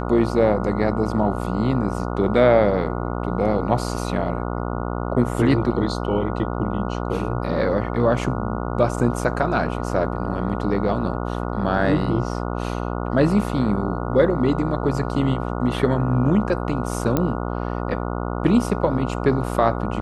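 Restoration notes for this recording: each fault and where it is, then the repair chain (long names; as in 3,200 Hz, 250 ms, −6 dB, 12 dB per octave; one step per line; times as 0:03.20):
mains buzz 60 Hz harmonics 24 −26 dBFS
0:17.17: click −7 dBFS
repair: click removal
hum removal 60 Hz, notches 24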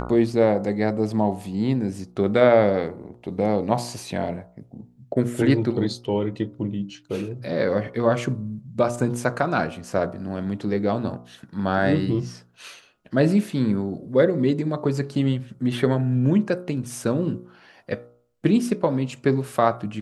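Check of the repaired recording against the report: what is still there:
none of them is left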